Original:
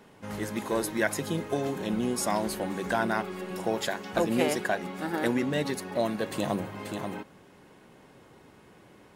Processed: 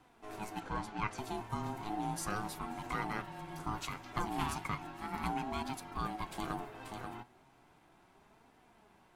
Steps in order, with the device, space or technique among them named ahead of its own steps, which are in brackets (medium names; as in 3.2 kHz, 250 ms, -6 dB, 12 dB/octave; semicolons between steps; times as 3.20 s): alien voice (ring modulator 530 Hz; flange 0.35 Hz, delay 3.8 ms, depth 4.8 ms, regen +66%); 0.60–1.18 s: distance through air 93 m; trim -2.5 dB